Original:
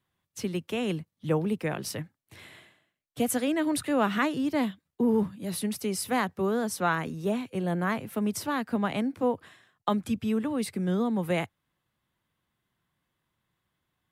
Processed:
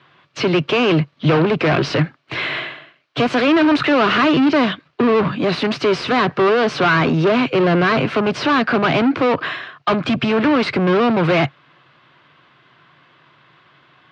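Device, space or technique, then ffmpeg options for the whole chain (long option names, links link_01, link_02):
overdrive pedal into a guitar cabinet: -filter_complex "[0:a]asplit=2[link_01][link_02];[link_02]highpass=frequency=720:poles=1,volume=35dB,asoftclip=type=tanh:threshold=-11.5dB[link_03];[link_01][link_03]amix=inputs=2:normalize=0,lowpass=frequency=2700:poles=1,volume=-6dB,highpass=110,equalizer=frequency=140:width_type=q:width=4:gain=8,equalizer=frequency=200:width_type=q:width=4:gain=-9,equalizer=frequency=500:width_type=q:width=4:gain=-4,equalizer=frequency=840:width_type=q:width=4:gain=-7,equalizer=frequency=1900:width_type=q:width=4:gain=-5,equalizer=frequency=3500:width_type=q:width=4:gain=-4,lowpass=frequency=4200:width=0.5412,lowpass=frequency=4200:width=1.3066,volume=6.5dB"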